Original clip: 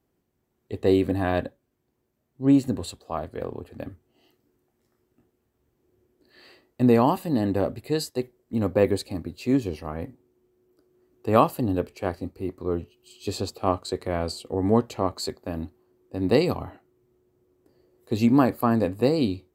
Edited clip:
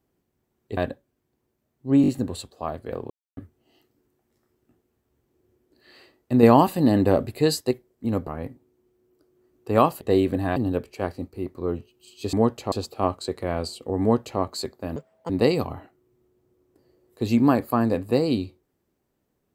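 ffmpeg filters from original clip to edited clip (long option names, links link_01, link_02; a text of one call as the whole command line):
ffmpeg -i in.wav -filter_complex "[0:a]asplit=16[link_01][link_02][link_03][link_04][link_05][link_06][link_07][link_08][link_09][link_10][link_11][link_12][link_13][link_14][link_15][link_16];[link_01]atrim=end=0.772[link_17];[link_02]atrim=start=1.318:end=2.592[link_18];[link_03]atrim=start=2.568:end=2.592[link_19];[link_04]atrim=start=2.568:end=2.592[link_20];[link_05]atrim=start=2.568:end=3.59,asetpts=PTS-STARTPTS,afade=type=out:start_time=1.018:duration=0.004:curve=hsin[link_21];[link_06]atrim=start=3.59:end=3.86,asetpts=PTS-STARTPTS,volume=0[link_22];[link_07]atrim=start=3.86:end=6.922,asetpts=PTS-STARTPTS,afade=type=in:duration=0.004:curve=hsin[link_23];[link_08]atrim=start=6.918:end=8.202,asetpts=PTS-STARTPTS,volume=5dB[link_24];[link_09]atrim=start=8.198:end=8.762[link_25];[link_10]atrim=start=9.848:end=11.592[link_26];[link_11]atrim=start=0.768:end=1.322[link_27];[link_12]atrim=start=11.588:end=13.362[link_28];[link_13]atrim=start=14.648:end=15.042[link_29];[link_14]atrim=start=13.358:end=15.604[link_30];[link_15]atrim=start=15.6:end=16.2,asetpts=PTS-STARTPTS,asetrate=78498,aresample=44100,atrim=end_sample=14865,asetpts=PTS-STARTPTS[link_31];[link_16]atrim=start=16.196[link_32];[link_17][link_18]acrossfade=duration=0.004:curve1=hsin:curve2=hsin[link_33];[link_33][link_19]acrossfade=duration=0.004:curve1=hsin:curve2=hsin[link_34];[link_34][link_20]acrossfade=duration=0.004:curve1=hsin:curve2=hsin[link_35];[link_21][link_22][link_23]concat=n=3:v=0:a=1[link_36];[link_35][link_36]acrossfade=duration=0.004:curve1=hsin:curve2=hsin[link_37];[link_37][link_24]acrossfade=duration=0.004:curve1=hsin:curve2=hsin[link_38];[link_38][link_25]acrossfade=duration=0.004:curve1=hsin:curve2=hsin[link_39];[link_39][link_26]acrossfade=duration=0.004:curve1=hsin:curve2=hsin[link_40];[link_40][link_27]acrossfade=duration=0.004:curve1=hsin:curve2=hsin[link_41];[link_41][link_28]acrossfade=duration=0.004:curve1=hsin:curve2=hsin[link_42];[link_42][link_29]acrossfade=duration=0.004:curve1=hsin:curve2=hsin[link_43];[link_43][link_30]acrossfade=duration=0.004:curve1=hsin:curve2=hsin[link_44];[link_44][link_31]acrossfade=duration=0.004:curve1=hsin:curve2=hsin[link_45];[link_45][link_32]acrossfade=duration=0.004:curve1=hsin:curve2=hsin" out.wav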